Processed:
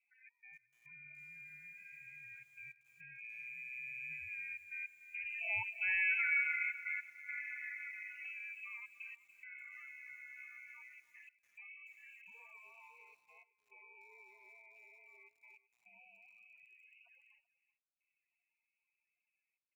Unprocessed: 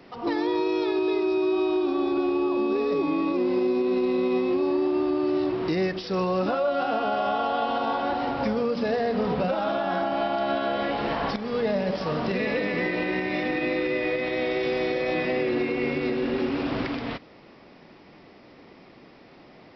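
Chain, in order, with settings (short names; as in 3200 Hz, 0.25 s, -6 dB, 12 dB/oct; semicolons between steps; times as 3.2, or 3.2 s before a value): Doppler pass-by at 6.04, 17 m/s, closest 7.5 m; bell 330 Hz -13 dB 0.22 oct; step gate "xx.x..xxxxxxxxx" 105 bpm -24 dB; loudest bins only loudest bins 16; echo 0.383 s -18 dB; inverted band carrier 2800 Hz; lo-fi delay 0.29 s, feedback 35%, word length 9-bit, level -15 dB; gain -7 dB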